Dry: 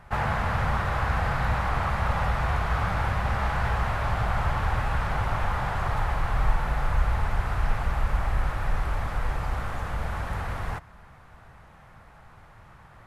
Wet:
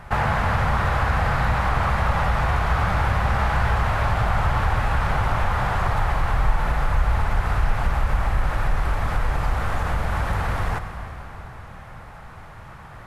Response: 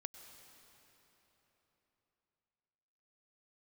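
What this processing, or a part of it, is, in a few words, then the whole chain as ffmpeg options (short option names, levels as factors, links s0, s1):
ducked reverb: -filter_complex "[0:a]asplit=3[s0][s1][s2];[1:a]atrim=start_sample=2205[s3];[s1][s3]afir=irnorm=-1:irlink=0[s4];[s2]apad=whole_len=575972[s5];[s4][s5]sidechaincompress=threshold=0.0282:ratio=8:attack=16:release=104,volume=3.16[s6];[s0][s6]amix=inputs=2:normalize=0"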